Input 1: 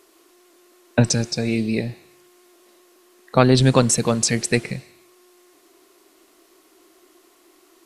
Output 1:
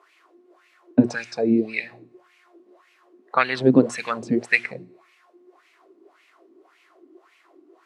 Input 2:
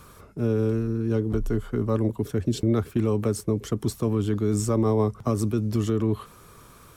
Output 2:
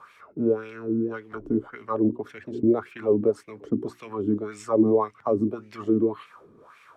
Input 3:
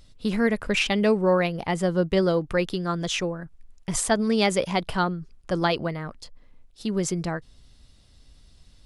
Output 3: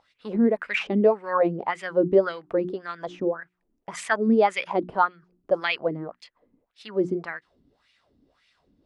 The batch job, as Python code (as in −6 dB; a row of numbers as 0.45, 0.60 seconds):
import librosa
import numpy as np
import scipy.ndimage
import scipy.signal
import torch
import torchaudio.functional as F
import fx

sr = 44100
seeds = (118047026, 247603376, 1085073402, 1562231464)

y = fx.hum_notches(x, sr, base_hz=60, count=6)
y = fx.wah_lfo(y, sr, hz=1.8, low_hz=260.0, high_hz=2400.0, q=3.7)
y = y * 10.0 ** (-26 / 20.0) / np.sqrt(np.mean(np.square(y)))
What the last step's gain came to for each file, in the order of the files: +10.0, +10.0, +10.0 decibels